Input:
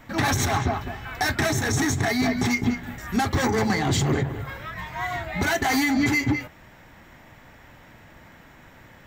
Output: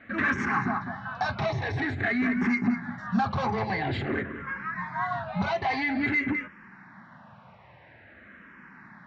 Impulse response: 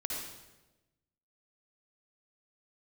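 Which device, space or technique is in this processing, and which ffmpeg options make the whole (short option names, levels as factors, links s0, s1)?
barber-pole phaser into a guitar amplifier: -filter_complex "[0:a]asplit=2[s0][s1];[s1]afreqshift=-0.49[s2];[s0][s2]amix=inputs=2:normalize=1,asoftclip=type=tanh:threshold=0.112,highpass=110,equalizer=f=200:t=q:w=4:g=8,equalizer=f=310:t=q:w=4:g=-4,equalizer=f=450:t=q:w=4:g=-5,equalizer=f=1100:t=q:w=4:g=5,equalizer=f=1600:t=q:w=4:g=6,equalizer=f=3300:t=q:w=4:g=-8,lowpass=f=3800:w=0.5412,lowpass=f=3800:w=1.3066"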